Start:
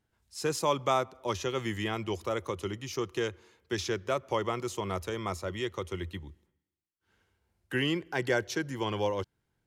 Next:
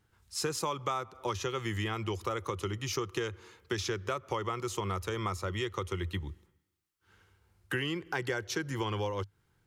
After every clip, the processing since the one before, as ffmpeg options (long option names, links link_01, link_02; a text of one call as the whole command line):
ffmpeg -i in.wav -af "equalizer=frequency=100:width_type=o:width=0.33:gain=5,equalizer=frequency=250:width_type=o:width=0.33:gain=-6,equalizer=frequency=630:width_type=o:width=0.33:gain=-7,equalizer=frequency=1250:width_type=o:width=0.33:gain=5,acompressor=threshold=-37dB:ratio=6,volume=6.5dB" out.wav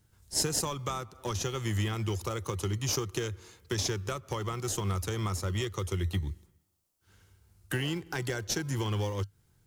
ffmpeg -i in.wav -filter_complex "[0:a]bass=frequency=250:gain=7,treble=frequency=4000:gain=12,asplit=2[link_01][link_02];[link_02]acrusher=samples=30:mix=1:aa=0.000001:lfo=1:lforange=18:lforate=0.27,volume=-11dB[link_03];[link_01][link_03]amix=inputs=2:normalize=0,volume=-3dB" out.wav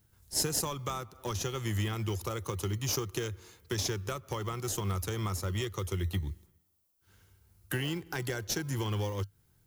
ffmpeg -i in.wav -af "aexciter=amount=2:drive=4.5:freq=11000,volume=-1.5dB" out.wav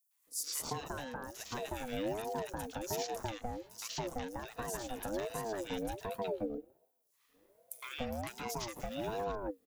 ffmpeg -i in.wav -filter_complex "[0:a]acrossover=split=1300|5800[link_01][link_02][link_03];[link_02]adelay=110[link_04];[link_01]adelay=270[link_05];[link_05][link_04][link_03]amix=inputs=3:normalize=0,aeval=exprs='val(0)*sin(2*PI*480*n/s+480*0.25/1.3*sin(2*PI*1.3*n/s))':channel_layout=same,volume=-2dB" out.wav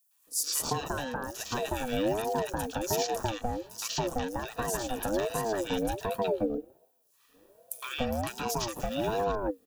ffmpeg -i in.wav -af "asuperstop=centerf=2100:order=8:qfactor=7.1,volume=8dB" out.wav